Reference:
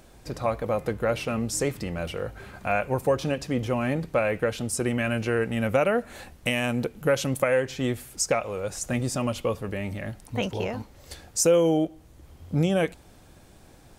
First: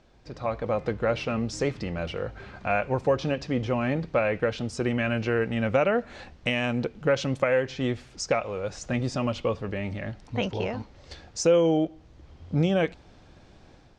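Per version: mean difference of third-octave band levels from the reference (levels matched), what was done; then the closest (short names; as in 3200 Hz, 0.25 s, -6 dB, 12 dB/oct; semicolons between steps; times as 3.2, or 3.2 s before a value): 3.0 dB: LPF 5600 Hz 24 dB/oct; AGC gain up to 7 dB; gain -7 dB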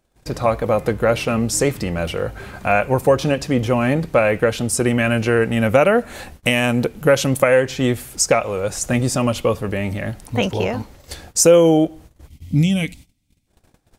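1.5 dB: spectral gain 12.28–13.47, 320–1900 Hz -16 dB; gate -48 dBFS, range -25 dB; gain +8.5 dB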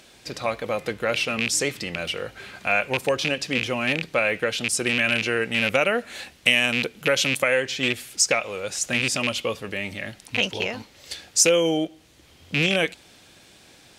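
5.0 dB: rattling part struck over -27 dBFS, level -20 dBFS; weighting filter D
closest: second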